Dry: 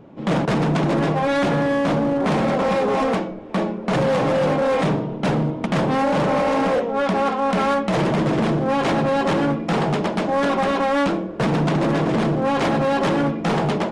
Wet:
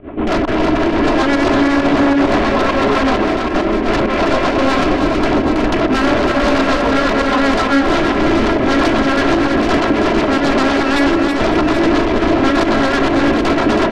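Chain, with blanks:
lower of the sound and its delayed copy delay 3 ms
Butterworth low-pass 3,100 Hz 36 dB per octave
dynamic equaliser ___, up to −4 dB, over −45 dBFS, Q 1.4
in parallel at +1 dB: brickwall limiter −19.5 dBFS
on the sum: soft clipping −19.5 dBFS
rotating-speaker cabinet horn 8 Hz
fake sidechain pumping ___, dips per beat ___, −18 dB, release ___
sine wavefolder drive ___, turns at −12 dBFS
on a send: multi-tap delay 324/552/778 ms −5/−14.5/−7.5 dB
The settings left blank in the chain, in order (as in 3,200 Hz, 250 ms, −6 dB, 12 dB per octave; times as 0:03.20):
110 Hz, 133 BPM, 1, 104 ms, 9 dB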